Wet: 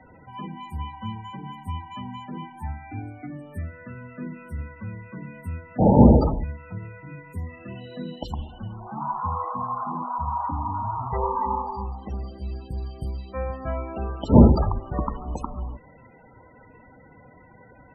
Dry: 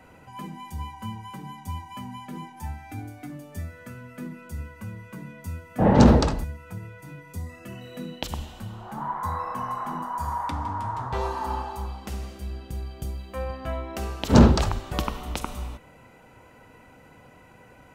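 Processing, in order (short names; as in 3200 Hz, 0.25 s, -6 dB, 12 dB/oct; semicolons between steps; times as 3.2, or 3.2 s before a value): 11.23–11.84 ripple EQ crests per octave 0.9, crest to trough 11 dB; loudest bins only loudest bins 32; gain +2 dB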